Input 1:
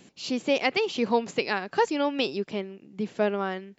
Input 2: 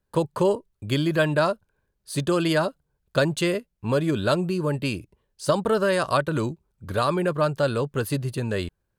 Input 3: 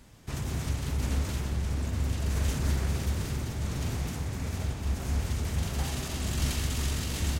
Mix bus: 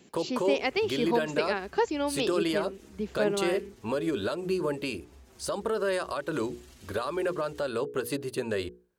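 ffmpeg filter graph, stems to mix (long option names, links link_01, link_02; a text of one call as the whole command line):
ffmpeg -i stem1.wav -i stem2.wav -i stem3.wav -filter_complex "[0:a]volume=-4.5dB[link_01];[1:a]bandreject=frequency=60:width_type=h:width=6,bandreject=frequency=120:width_type=h:width=6,bandreject=frequency=180:width_type=h:width=6,bandreject=frequency=240:width_type=h:width=6,bandreject=frequency=300:width_type=h:width=6,bandreject=frequency=360:width_type=h:width=6,bandreject=frequency=420:width_type=h:width=6,bandreject=frequency=480:width_type=h:width=6,volume=-1dB[link_02];[2:a]acompressor=threshold=-29dB:ratio=6,asplit=2[link_03][link_04];[link_04]adelay=5.7,afreqshift=-2[link_05];[link_03][link_05]amix=inputs=2:normalize=1,adelay=300,volume=-13.5dB[link_06];[link_02][link_06]amix=inputs=2:normalize=0,equalizer=frequency=130:width=1.4:gain=-13.5,alimiter=limit=-21.5dB:level=0:latency=1:release=173,volume=0dB[link_07];[link_01][link_07]amix=inputs=2:normalize=0,highpass=49,equalizer=frequency=390:width_type=o:width=0.45:gain=5" out.wav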